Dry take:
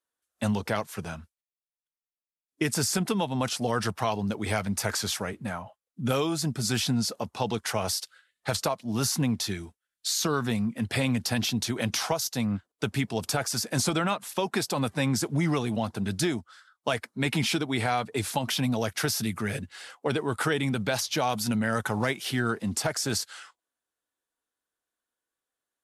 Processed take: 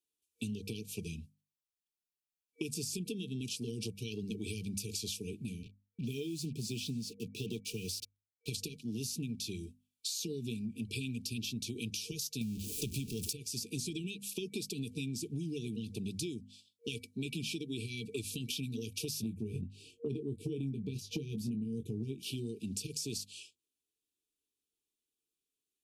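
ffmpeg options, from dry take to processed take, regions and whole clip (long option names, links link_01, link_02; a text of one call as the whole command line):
ffmpeg -i in.wav -filter_complex "[0:a]asettb=1/sr,asplit=3[link_01][link_02][link_03];[link_01]atrim=end=5.634[link_04];[link_02]atrim=start=5.63:end=8.48,asetpts=PTS-STARTPTS,afade=type=in:duration=0.004:curve=qsin,afade=type=out:start_time=2.846:duration=0.004:curve=qsin,highpass=frequency=88:width=0.5412,highpass=frequency=88:width=1.3066,highshelf=frequency=3600:gain=-5.5,acrusher=bits=6:mix=0:aa=0.5[link_05];[link_03]atrim=start=8.476[link_06];[link_04][link_05]acrossfade=duration=0.004:curve1=hsin:curve2=qsin[link_07];[link_07][link_06]acrossfade=duration=0.004:curve1=qsin:curve2=hsin,asettb=1/sr,asplit=3[link_08][link_09][link_10];[link_08]atrim=end=12.414[link_11];[link_09]atrim=start=12.41:end=13.33,asetpts=PTS-STARTPTS,afade=type=in:duration=0.004:curve=qsin,afade=type=out:start_time=0.916:duration=0.004:curve=qsin,aeval=exprs='val(0)+0.5*0.0299*sgn(val(0))':channel_layout=same,bass=frequency=250:gain=6,treble=frequency=4000:gain=8[link_12];[link_10]atrim=start=13.326[link_13];[link_11][link_12]acrossfade=duration=0.004:curve1=hsin:curve2=qsin[link_14];[link_14][link_13]acrossfade=duration=0.004:curve1=qsin:curve2=hsin,asettb=1/sr,asplit=3[link_15][link_16][link_17];[link_15]atrim=end=19.234[link_18];[link_16]atrim=start=19.23:end=22.23,asetpts=PTS-STARTPTS,afade=type=in:duration=0.004:curve=qsin,afade=type=out:start_time=2.996:duration=0.004:curve=qsin,tiltshelf=frequency=790:gain=9.5,asplit=2[link_19][link_20];[link_20]adelay=22,volume=-9.5dB[link_21];[link_19][link_21]amix=inputs=2:normalize=0,atrim=end_sample=132300[link_22];[link_17]atrim=start=22.226[link_23];[link_18][link_22]acrossfade=duration=0.004:curve1=hsin:curve2=qsin[link_24];[link_24][link_23]acrossfade=duration=0.004:curve1=qsin:curve2=hsin,afftfilt=real='re*(1-between(b*sr/4096,470,2300))':imag='im*(1-between(b*sr/4096,470,2300))':win_size=4096:overlap=0.75,bandreject=frequency=50:width_type=h:width=6,bandreject=frequency=100:width_type=h:width=6,bandreject=frequency=150:width_type=h:width=6,bandreject=frequency=200:width_type=h:width=6,bandreject=frequency=250:width_type=h:width=6,acompressor=threshold=-35dB:ratio=6,volume=-1dB" out.wav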